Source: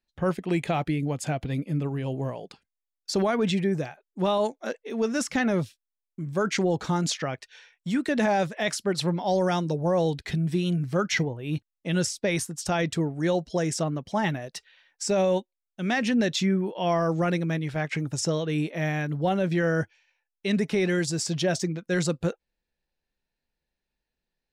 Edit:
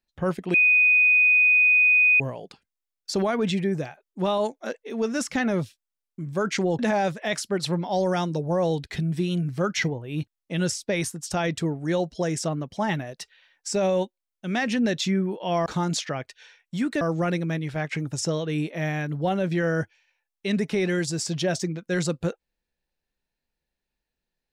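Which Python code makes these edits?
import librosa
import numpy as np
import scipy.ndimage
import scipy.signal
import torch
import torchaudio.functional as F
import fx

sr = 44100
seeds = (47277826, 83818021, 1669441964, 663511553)

y = fx.edit(x, sr, fx.bleep(start_s=0.54, length_s=1.66, hz=2490.0, db=-14.5),
    fx.move(start_s=6.79, length_s=1.35, to_s=17.01), tone=tone)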